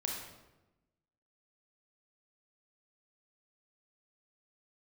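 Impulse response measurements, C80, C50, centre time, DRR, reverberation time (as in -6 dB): 4.5 dB, 2.0 dB, 54 ms, -1.0 dB, 1.0 s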